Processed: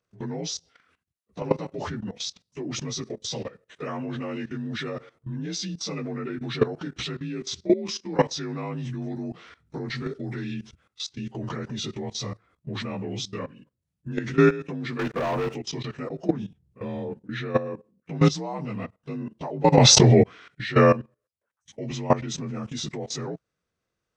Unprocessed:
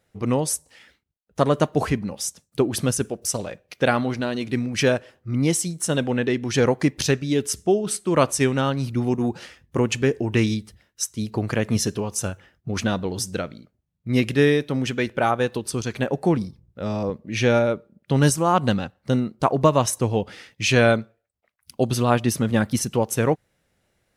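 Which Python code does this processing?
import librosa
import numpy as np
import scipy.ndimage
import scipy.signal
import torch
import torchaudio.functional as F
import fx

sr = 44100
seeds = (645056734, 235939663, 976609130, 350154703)

y = fx.partial_stretch(x, sr, pct=86)
y = fx.high_shelf(y, sr, hz=4000.0, db=5.0, at=(9.95, 10.54))
y = fx.level_steps(y, sr, step_db=17)
y = fx.leveller(y, sr, passes=3, at=(14.99, 15.55))
y = fx.env_flatten(y, sr, amount_pct=100, at=(19.72, 20.22), fade=0.02)
y = y * librosa.db_to_amplitude(2.5)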